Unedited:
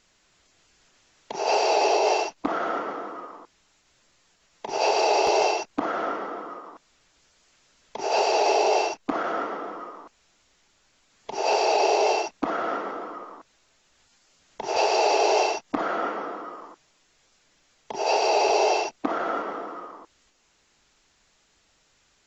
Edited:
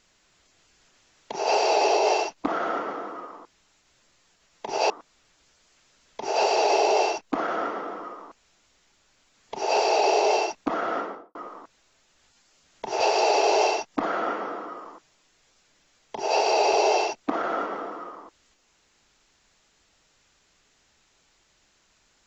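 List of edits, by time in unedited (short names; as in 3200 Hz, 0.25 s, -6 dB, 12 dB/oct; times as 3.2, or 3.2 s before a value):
4.9–6.66 cut
12.73–13.11 studio fade out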